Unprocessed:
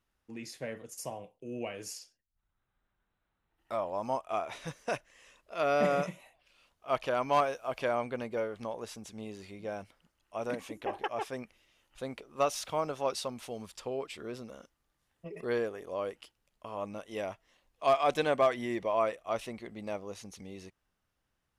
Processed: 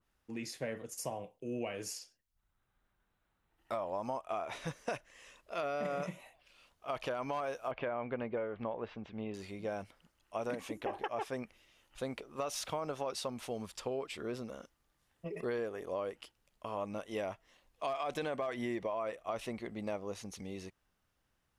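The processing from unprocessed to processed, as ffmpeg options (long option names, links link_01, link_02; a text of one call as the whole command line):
ffmpeg -i in.wav -filter_complex "[0:a]asettb=1/sr,asplit=3[link_01][link_02][link_03];[link_01]atrim=end=7.714[link_04];[link_02]atrim=start=7.71:end=9.34,asetpts=PTS-STARTPTS,afade=type=in:duration=0.004:curve=qsin,afade=type=out:start_time=1.626:duration=0.004:curve=qsin,lowpass=frequency=3000:width=0.5412,lowpass=frequency=3000:width=1.3066[link_05];[link_03]atrim=start=9.336[link_06];[link_04][link_05]acrossfade=duration=0.004:curve1=hsin:curve2=qsin[link_07];[link_07][link_06]acrossfade=duration=0.004:curve1=qsin:curve2=hsin,alimiter=limit=-24dB:level=0:latency=1:release=18,acompressor=threshold=-35dB:ratio=6,adynamicequalizer=threshold=0.00178:dfrequency=2300:dqfactor=0.7:tfrequency=2300:tqfactor=0.7:attack=5:release=100:ratio=0.375:range=1.5:mode=cutabove:tftype=highshelf,volume=2dB" out.wav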